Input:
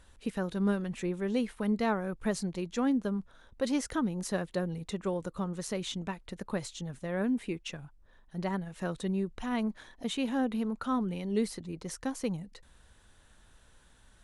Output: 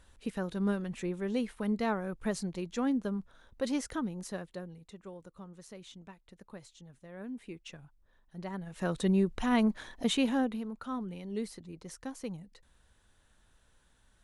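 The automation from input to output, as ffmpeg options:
-af "volume=7.08,afade=t=out:st=3.7:d=1.12:silence=0.251189,afade=t=in:st=7.15:d=0.6:silence=0.446684,afade=t=in:st=8.53:d=0.56:silence=0.251189,afade=t=out:st=10.12:d=0.5:silence=0.266073"

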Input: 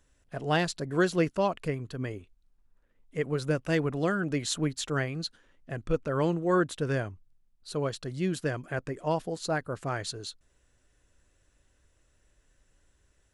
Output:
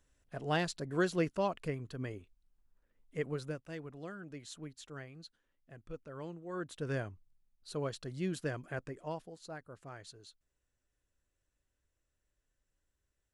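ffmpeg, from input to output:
-af "volume=1.78,afade=t=out:st=3.23:d=0.4:silence=0.266073,afade=t=in:st=6.53:d=0.42:silence=0.281838,afade=t=out:st=8.7:d=0.61:silence=0.316228"

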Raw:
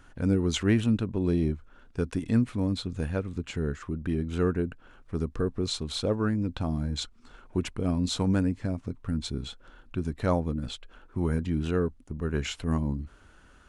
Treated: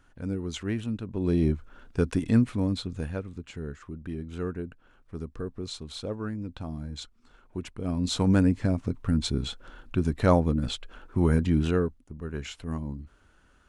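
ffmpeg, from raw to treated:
-af "volume=5.96,afade=t=in:st=1.02:d=0.52:silence=0.281838,afade=t=out:st=2.08:d=1.33:silence=0.298538,afade=t=in:st=7.74:d=0.76:silence=0.266073,afade=t=out:st=11.58:d=0.43:silence=0.298538"

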